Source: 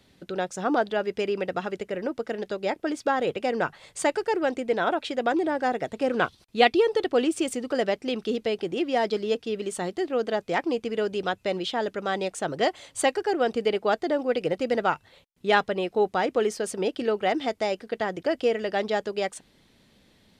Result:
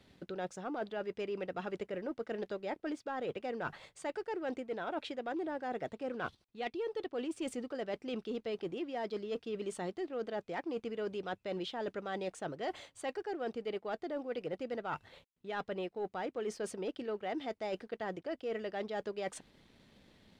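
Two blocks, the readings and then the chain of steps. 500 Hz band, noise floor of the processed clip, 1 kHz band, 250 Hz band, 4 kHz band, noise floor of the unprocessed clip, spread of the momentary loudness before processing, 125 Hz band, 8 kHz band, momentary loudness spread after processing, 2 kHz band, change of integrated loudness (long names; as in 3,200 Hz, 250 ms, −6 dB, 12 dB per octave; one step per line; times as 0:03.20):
−13.0 dB, −74 dBFS, −14.0 dB, −11.5 dB, −15.0 dB, −62 dBFS, 7 LU, −10.0 dB, −15.5 dB, 3 LU, −14.5 dB, −13.0 dB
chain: reversed playback
downward compressor 12 to 1, threshold −34 dBFS, peak gain reduction 20.5 dB
reversed playback
leveller curve on the samples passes 1
high-shelf EQ 6,000 Hz −10 dB
level −4 dB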